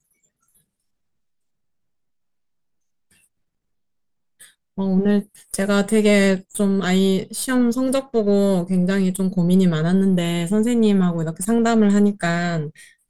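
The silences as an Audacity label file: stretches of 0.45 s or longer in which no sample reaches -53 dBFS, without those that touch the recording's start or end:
0.610000	3.110000	silence
3.260000	4.400000	silence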